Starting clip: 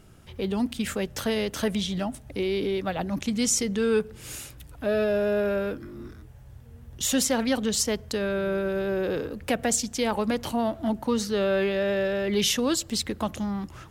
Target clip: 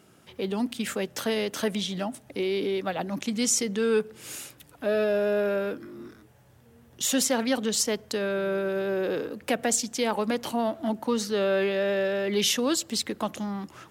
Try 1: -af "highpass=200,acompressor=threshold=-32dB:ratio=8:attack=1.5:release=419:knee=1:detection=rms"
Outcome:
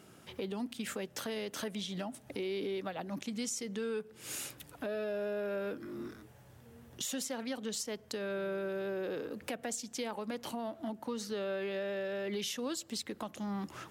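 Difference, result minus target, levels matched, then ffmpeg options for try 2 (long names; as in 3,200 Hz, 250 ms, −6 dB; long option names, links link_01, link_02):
downward compressor: peak gain reduction +15 dB
-af "highpass=200"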